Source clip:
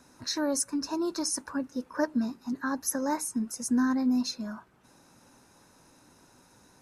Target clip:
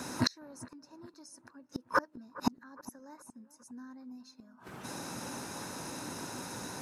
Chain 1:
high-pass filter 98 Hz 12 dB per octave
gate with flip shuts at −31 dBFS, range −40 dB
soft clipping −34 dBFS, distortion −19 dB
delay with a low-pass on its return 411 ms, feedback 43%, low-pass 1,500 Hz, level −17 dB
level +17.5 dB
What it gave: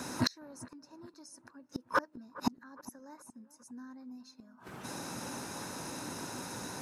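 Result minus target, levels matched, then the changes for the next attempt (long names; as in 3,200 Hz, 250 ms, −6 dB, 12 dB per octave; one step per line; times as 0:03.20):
soft clipping: distortion +14 dB
change: soft clipping −25.5 dBFS, distortion −33 dB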